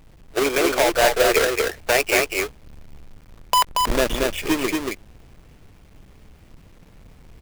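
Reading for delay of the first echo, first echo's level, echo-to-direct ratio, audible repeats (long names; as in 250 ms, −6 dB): 231 ms, −3.5 dB, −3.5 dB, 1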